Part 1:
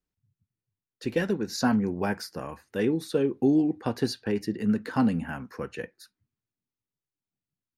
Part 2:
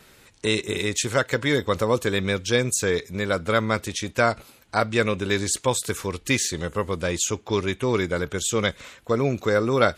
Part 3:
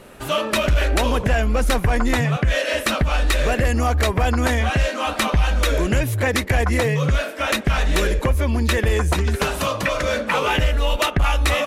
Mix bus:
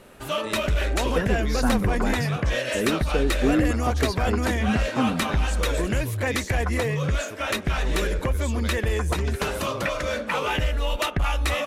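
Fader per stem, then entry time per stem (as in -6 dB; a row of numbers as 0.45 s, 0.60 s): -0.5 dB, -14.0 dB, -5.5 dB; 0.00 s, 0.00 s, 0.00 s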